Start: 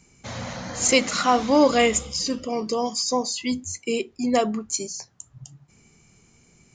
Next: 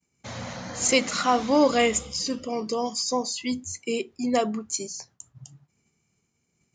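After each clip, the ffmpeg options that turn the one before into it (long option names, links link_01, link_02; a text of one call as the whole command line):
ffmpeg -i in.wav -af "highpass=66,agate=range=-33dB:threshold=-47dB:ratio=3:detection=peak,volume=-2.5dB" out.wav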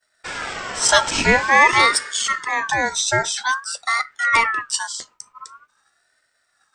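ffmpeg -i in.wav -af "acontrast=58,aeval=exprs='val(0)*sin(2*PI*1400*n/s+1400*0.2/0.48*sin(2*PI*0.48*n/s))':channel_layout=same,volume=3.5dB" out.wav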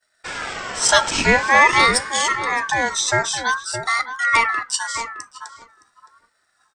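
ffmpeg -i in.wav -filter_complex "[0:a]asplit=2[link_01][link_02];[link_02]adelay=616,lowpass=frequency=1100:poles=1,volume=-7dB,asplit=2[link_03][link_04];[link_04]adelay=616,lowpass=frequency=1100:poles=1,volume=0.15,asplit=2[link_05][link_06];[link_06]adelay=616,lowpass=frequency=1100:poles=1,volume=0.15[link_07];[link_01][link_03][link_05][link_07]amix=inputs=4:normalize=0" out.wav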